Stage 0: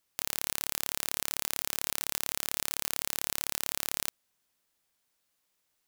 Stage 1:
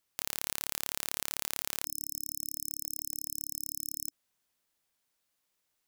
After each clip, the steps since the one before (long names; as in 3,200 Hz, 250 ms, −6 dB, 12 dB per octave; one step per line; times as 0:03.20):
time-frequency box erased 0:01.85–0:04.11, 290–5,200 Hz
level −2.5 dB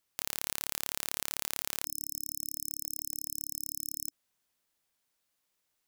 no processing that can be heard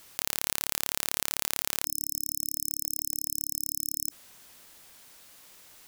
envelope flattener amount 50%
level +3.5 dB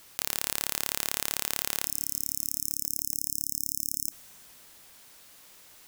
dense smooth reverb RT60 3 s, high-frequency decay 0.95×, DRR 19 dB